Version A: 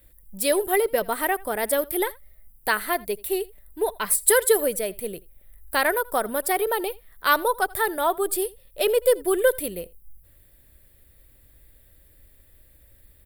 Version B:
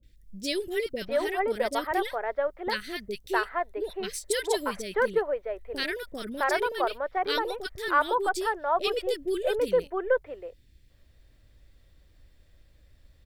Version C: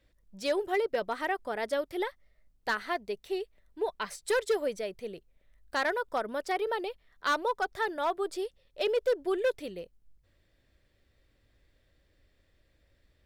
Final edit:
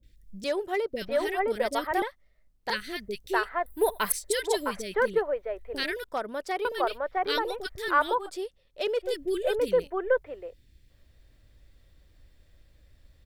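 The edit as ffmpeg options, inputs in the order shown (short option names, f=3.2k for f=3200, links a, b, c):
-filter_complex "[2:a]asplit=4[a][b][c][d];[1:a]asplit=6[e][f][g][h][i][j];[e]atrim=end=0.442[k];[a]atrim=start=0.438:end=0.932[l];[f]atrim=start=0.928:end=2.022[m];[b]atrim=start=2.018:end=2.702[n];[g]atrim=start=2.698:end=3.662[o];[0:a]atrim=start=3.658:end=4.122[p];[h]atrim=start=4.118:end=6.042[q];[c]atrim=start=6.038:end=6.652[r];[i]atrim=start=6.648:end=8.3[s];[d]atrim=start=8.14:end=9.14[t];[j]atrim=start=8.98[u];[k][l]acrossfade=d=0.004:c1=hsin:c2=hsin[v];[v][m]acrossfade=d=0.004:c1=hsin:c2=hsin[w];[w][n]acrossfade=d=0.004:c1=hsin:c2=hsin[x];[x][o]acrossfade=d=0.004:c1=hsin:c2=hsin[y];[y][p]acrossfade=d=0.004:c1=hsin:c2=hsin[z];[z][q]acrossfade=d=0.004:c1=hsin:c2=hsin[aa];[aa][r]acrossfade=d=0.004:c1=hsin:c2=hsin[ab];[ab][s]acrossfade=d=0.004:c1=hsin:c2=hsin[ac];[ac][t]acrossfade=d=0.16:c1=tri:c2=tri[ad];[ad][u]acrossfade=d=0.16:c1=tri:c2=tri"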